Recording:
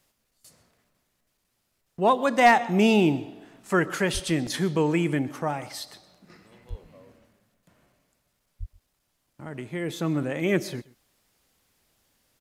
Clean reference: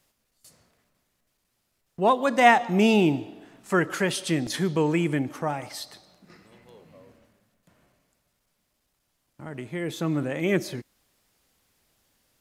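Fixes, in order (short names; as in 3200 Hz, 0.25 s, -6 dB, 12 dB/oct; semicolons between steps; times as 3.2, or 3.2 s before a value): clip repair -8.5 dBFS; de-plosive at 4.13/6.69/8.59; inverse comb 0.128 s -22 dB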